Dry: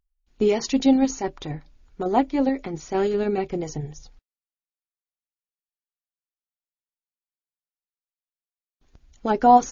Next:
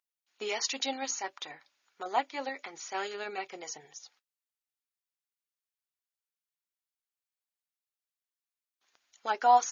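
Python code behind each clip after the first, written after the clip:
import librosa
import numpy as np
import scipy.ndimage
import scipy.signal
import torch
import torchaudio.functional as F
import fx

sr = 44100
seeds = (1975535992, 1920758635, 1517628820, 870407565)

y = scipy.signal.sosfilt(scipy.signal.butter(2, 1100.0, 'highpass', fs=sr, output='sos'), x)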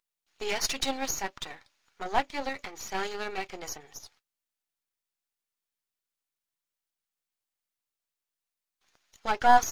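y = np.where(x < 0.0, 10.0 ** (-12.0 / 20.0) * x, x)
y = F.gain(torch.from_numpy(y), 6.0).numpy()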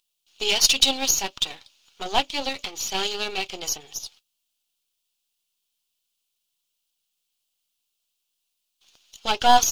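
y = fx.high_shelf_res(x, sr, hz=2400.0, db=7.0, q=3.0)
y = F.gain(torch.from_numpy(y), 4.0).numpy()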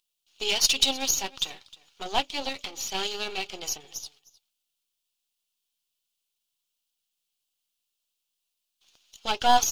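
y = x + 10.0 ** (-21.0 / 20.0) * np.pad(x, (int(309 * sr / 1000.0), 0))[:len(x)]
y = F.gain(torch.from_numpy(y), -4.0).numpy()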